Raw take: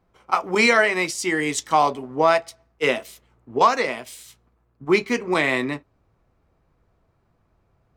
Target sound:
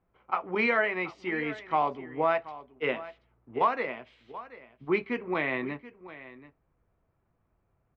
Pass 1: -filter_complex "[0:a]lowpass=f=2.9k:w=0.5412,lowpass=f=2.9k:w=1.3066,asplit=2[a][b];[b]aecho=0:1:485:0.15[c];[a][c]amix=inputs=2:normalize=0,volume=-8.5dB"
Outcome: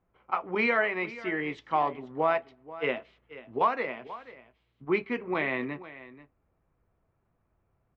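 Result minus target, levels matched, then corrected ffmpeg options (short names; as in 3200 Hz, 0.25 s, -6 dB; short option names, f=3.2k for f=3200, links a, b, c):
echo 0.246 s early
-filter_complex "[0:a]lowpass=f=2.9k:w=0.5412,lowpass=f=2.9k:w=1.3066,asplit=2[a][b];[b]aecho=0:1:731:0.15[c];[a][c]amix=inputs=2:normalize=0,volume=-8.5dB"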